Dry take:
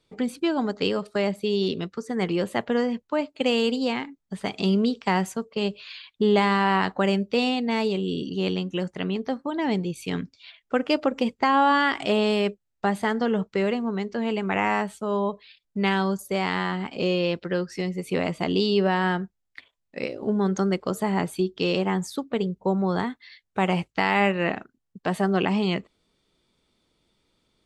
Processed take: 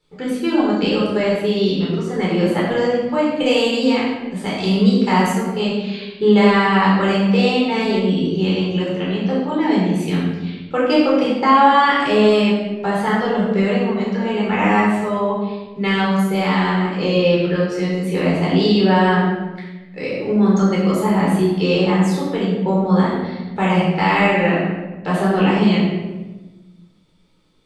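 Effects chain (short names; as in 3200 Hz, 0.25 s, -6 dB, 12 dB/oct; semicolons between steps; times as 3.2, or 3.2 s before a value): 2.64–5.3 high shelf 7300 Hz +7.5 dB; shoebox room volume 700 m³, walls mixed, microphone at 4.2 m; gain -2.5 dB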